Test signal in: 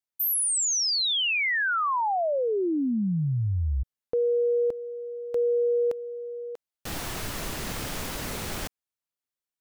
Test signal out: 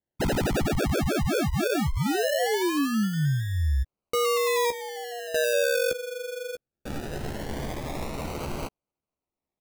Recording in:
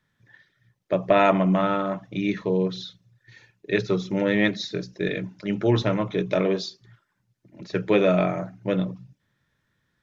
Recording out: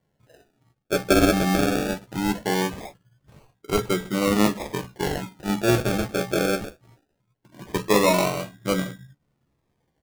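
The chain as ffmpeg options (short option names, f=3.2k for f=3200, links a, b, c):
-filter_complex "[0:a]acrusher=samples=35:mix=1:aa=0.000001:lfo=1:lforange=21:lforate=0.2,asplit=2[a][b];[b]adelay=14,volume=-8dB[c];[a][c]amix=inputs=2:normalize=0"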